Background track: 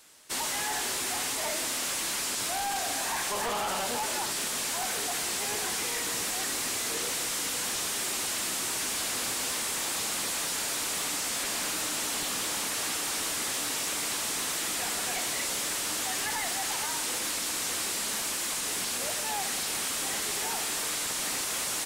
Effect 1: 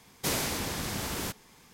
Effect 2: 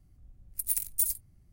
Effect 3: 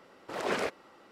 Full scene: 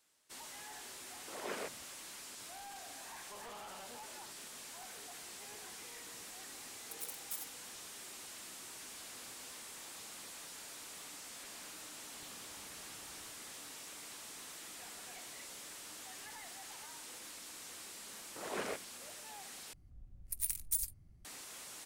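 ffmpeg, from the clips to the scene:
-filter_complex "[3:a]asplit=2[s0][s1];[2:a]asplit=2[s2][s3];[0:a]volume=0.119[s4];[s0]acrossover=split=160[s5][s6];[s5]adelay=160[s7];[s7][s6]amix=inputs=2:normalize=0[s8];[s2]aeval=exprs='val(0)*sgn(sin(2*PI*800*n/s))':c=same[s9];[1:a]acompressor=threshold=0.00355:ratio=6:attack=3.2:release=140:knee=1:detection=peak[s10];[s3]highshelf=f=9600:g=-10[s11];[s4]asplit=2[s12][s13];[s12]atrim=end=19.734[s14];[s11]atrim=end=1.52,asetpts=PTS-STARTPTS,volume=0.891[s15];[s13]atrim=start=21.246[s16];[s8]atrim=end=1.11,asetpts=PTS-STARTPTS,volume=0.282,afade=t=in:d=0.004:c=hsin,afade=t=out:st=1.106:d=0.004:c=hsin,adelay=990[s17];[s9]atrim=end=1.52,asetpts=PTS-STARTPTS,volume=0.158,afade=t=in:d=0.004:c=hsin,afade=t=out:st=1.516:d=0.004:c=hsin,adelay=6320[s18];[s10]atrim=end=1.73,asetpts=PTS-STARTPTS,volume=0.266,afade=t=in:d=0.004:c=hsin,afade=t=out:st=1.726:d=0.004:c=hsin,adelay=11990[s19];[s1]atrim=end=1.11,asetpts=PTS-STARTPTS,volume=0.355,afade=t=in:d=0.004:c=hsin,afade=t=out:st=1.106:d=0.004:c=hsin,adelay=18070[s20];[s14][s15]acrossfade=d=0.004:c1=hsin:c2=hsin[s21];[s21][s16]acrossfade=d=0.004:c1=hsin:c2=hsin[s22];[s22][s17][s18][s19][s20]amix=inputs=5:normalize=0"

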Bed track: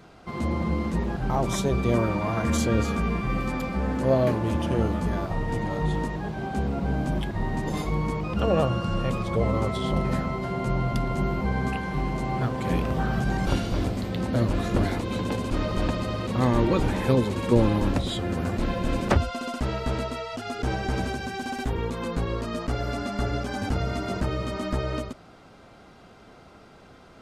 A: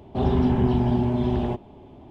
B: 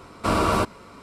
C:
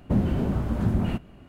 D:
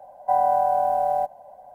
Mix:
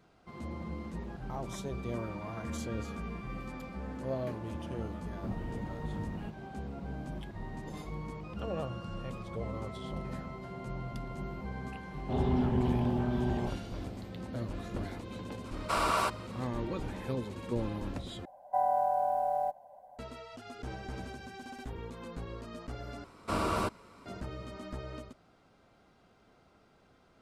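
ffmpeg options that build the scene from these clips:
-filter_complex "[2:a]asplit=2[s0][s1];[0:a]volume=0.2[s2];[s0]highpass=690[s3];[s2]asplit=3[s4][s5][s6];[s4]atrim=end=18.254[s7];[4:a]atrim=end=1.74,asetpts=PTS-STARTPTS,volume=0.376[s8];[s5]atrim=start=19.986:end=23.044[s9];[s1]atrim=end=1.02,asetpts=PTS-STARTPTS,volume=0.316[s10];[s6]atrim=start=24.056[s11];[3:a]atrim=end=1.48,asetpts=PTS-STARTPTS,volume=0.158,afade=t=in:d=0.004:c=hsin,afade=t=out:st=1.476:d=0.004:c=hsin,adelay=226233S[s12];[1:a]atrim=end=2.1,asetpts=PTS-STARTPTS,volume=0.376,afade=t=in:d=0.004:c=hsin,afade=t=out:st=2.096:d=0.004:c=hsin,adelay=11940[s13];[s3]atrim=end=1.02,asetpts=PTS-STARTPTS,volume=0.562,afade=t=in:d=0.004:c=hsin,afade=t=out:st=1.016:d=0.004:c=hsin,adelay=15450[s14];[s7][s8]acrossfade=d=0.004:c1=hsin:c2=hsin[s15];[s15][s9]acrossfade=d=0.004:c1=hsin:c2=hsin[s16];[s16][s10]acrossfade=d=0.004:c1=hsin:c2=hsin[s17];[s17][s11]acrossfade=d=0.004:c1=hsin:c2=hsin[s18];[s18][s12][s13][s14]amix=inputs=4:normalize=0"

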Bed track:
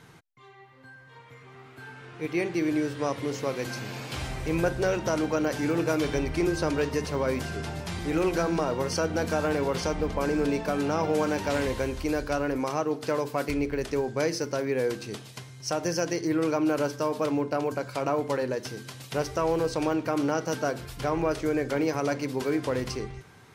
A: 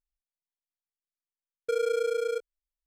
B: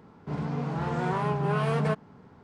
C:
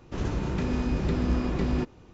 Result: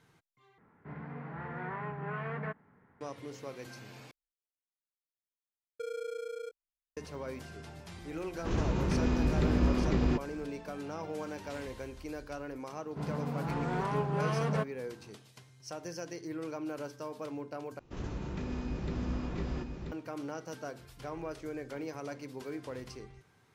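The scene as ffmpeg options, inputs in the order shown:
-filter_complex "[2:a]asplit=2[s0][s1];[3:a]asplit=2[s2][s3];[0:a]volume=0.211[s4];[s0]lowpass=f=1900:t=q:w=3.4[s5];[s3]aecho=1:1:984:0.531[s6];[s4]asplit=4[s7][s8][s9][s10];[s7]atrim=end=0.584[s11];[s5]atrim=end=2.43,asetpts=PTS-STARTPTS,volume=0.224[s12];[s8]atrim=start=3.006:end=4.114[s13];[1:a]atrim=end=2.86,asetpts=PTS-STARTPTS,volume=0.266[s14];[s9]atrim=start=6.966:end=17.794[s15];[s6]atrim=end=2.13,asetpts=PTS-STARTPTS,volume=0.335[s16];[s10]atrim=start=19.916[s17];[s2]atrim=end=2.13,asetpts=PTS-STARTPTS,volume=0.841,afade=t=in:d=0.004:c=hsin,afade=t=out:st=2.126:d=0.004:c=hsin,adelay=8330[s18];[s1]atrim=end=2.43,asetpts=PTS-STARTPTS,volume=0.562,afade=t=in:d=0.004:c=hsin,afade=t=out:st=2.426:d=0.004:c=hsin,adelay=12690[s19];[s11][s12]acrossfade=d=0.004:c1=hsin:c2=hsin[s20];[s20][s13]acrossfade=d=0.004:c1=hsin:c2=hsin[s21];[s21][s14]acrossfade=d=0.004:c1=hsin:c2=hsin[s22];[s22][s15]acrossfade=d=0.004:c1=hsin:c2=hsin[s23];[s23][s16]acrossfade=d=0.004:c1=hsin:c2=hsin[s24];[s24][s17]acrossfade=d=0.004:c1=hsin:c2=hsin[s25];[s25][s18][s19]amix=inputs=3:normalize=0"

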